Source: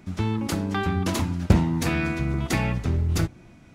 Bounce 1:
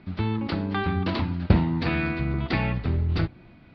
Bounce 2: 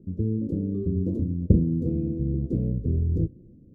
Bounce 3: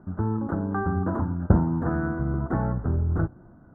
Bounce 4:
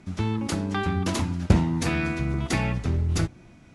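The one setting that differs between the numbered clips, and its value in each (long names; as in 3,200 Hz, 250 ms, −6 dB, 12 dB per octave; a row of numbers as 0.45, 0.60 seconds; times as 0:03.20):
elliptic low-pass filter, frequency: 4,500, 500, 1,500, 11,000 Hertz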